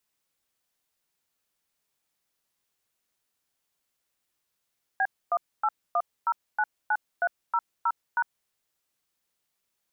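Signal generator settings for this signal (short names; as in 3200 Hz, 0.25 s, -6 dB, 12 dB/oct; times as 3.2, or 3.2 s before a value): DTMF "B181099300#", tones 54 ms, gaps 0.263 s, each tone -24 dBFS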